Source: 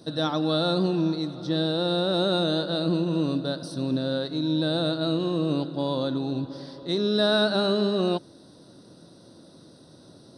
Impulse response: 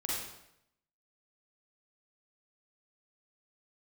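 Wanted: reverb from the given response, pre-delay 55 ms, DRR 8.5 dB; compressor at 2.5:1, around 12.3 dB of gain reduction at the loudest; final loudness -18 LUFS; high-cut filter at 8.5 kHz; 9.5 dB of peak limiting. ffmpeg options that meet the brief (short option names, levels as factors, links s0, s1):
-filter_complex "[0:a]lowpass=8500,acompressor=threshold=0.0112:ratio=2.5,alimiter=level_in=2.99:limit=0.0631:level=0:latency=1,volume=0.335,asplit=2[s0][s1];[1:a]atrim=start_sample=2205,adelay=55[s2];[s1][s2]afir=irnorm=-1:irlink=0,volume=0.237[s3];[s0][s3]amix=inputs=2:normalize=0,volume=16.8"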